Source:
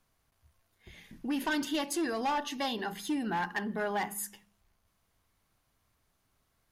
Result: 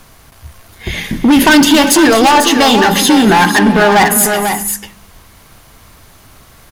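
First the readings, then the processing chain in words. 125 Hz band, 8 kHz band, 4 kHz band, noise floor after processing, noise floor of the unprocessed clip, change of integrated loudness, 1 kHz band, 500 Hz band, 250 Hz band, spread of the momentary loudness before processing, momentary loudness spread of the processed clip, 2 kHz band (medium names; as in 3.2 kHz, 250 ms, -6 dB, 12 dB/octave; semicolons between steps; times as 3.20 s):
+27.0 dB, +27.5 dB, +26.5 dB, -43 dBFS, -76 dBFS, +24.5 dB, +24.0 dB, +24.5 dB, +25.0 dB, 6 LU, 13 LU, +25.0 dB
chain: in parallel at +0.5 dB: compression, threshold -42 dBFS, peak gain reduction 13 dB; on the sum: hard clipper -30.5 dBFS, distortion -11 dB; multi-tap echo 241/357/495 ms -16/-15/-8 dB; loudness maximiser +27 dB; trim -1 dB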